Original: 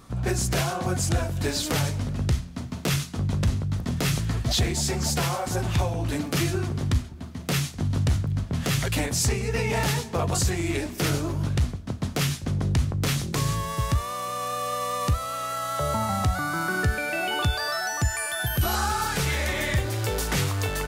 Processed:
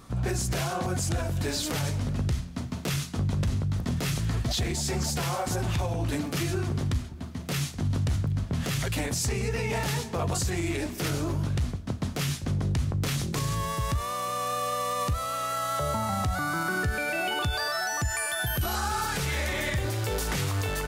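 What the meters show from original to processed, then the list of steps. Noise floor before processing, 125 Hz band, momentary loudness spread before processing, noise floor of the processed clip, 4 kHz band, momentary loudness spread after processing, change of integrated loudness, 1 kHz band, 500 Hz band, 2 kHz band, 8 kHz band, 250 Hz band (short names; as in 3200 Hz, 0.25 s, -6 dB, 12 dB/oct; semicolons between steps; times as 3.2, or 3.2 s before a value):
-38 dBFS, -3.0 dB, 4 LU, -38 dBFS, -3.0 dB, 2 LU, -3.0 dB, -2.0 dB, -2.5 dB, -2.5 dB, -3.0 dB, -2.5 dB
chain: limiter -20 dBFS, peak gain reduction 7 dB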